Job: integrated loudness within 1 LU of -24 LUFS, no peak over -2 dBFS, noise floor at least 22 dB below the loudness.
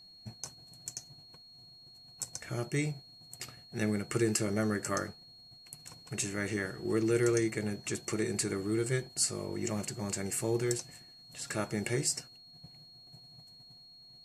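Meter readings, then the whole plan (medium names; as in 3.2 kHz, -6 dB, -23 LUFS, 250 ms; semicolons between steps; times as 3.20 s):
steady tone 4.3 kHz; tone level -53 dBFS; loudness -33.5 LUFS; peak level -14.5 dBFS; loudness target -24.0 LUFS
-> band-stop 4.3 kHz, Q 30; trim +9.5 dB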